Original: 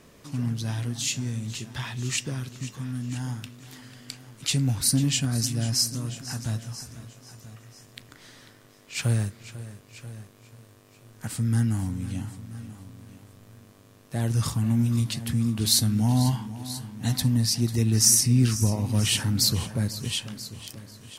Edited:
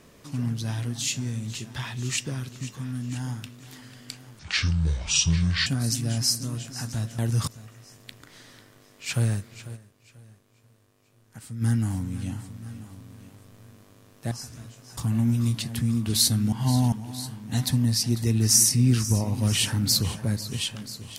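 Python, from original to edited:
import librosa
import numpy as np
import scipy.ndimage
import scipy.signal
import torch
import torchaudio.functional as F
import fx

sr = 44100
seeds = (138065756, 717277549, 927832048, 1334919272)

y = fx.edit(x, sr, fx.speed_span(start_s=4.39, length_s=0.79, speed=0.62),
    fx.swap(start_s=6.7, length_s=0.66, other_s=14.2, other_length_s=0.29),
    fx.fade_down_up(start_s=9.64, length_s=1.87, db=-10.0, fade_s=0.14, curve='exp'),
    fx.reverse_span(start_s=16.04, length_s=0.4), tone=tone)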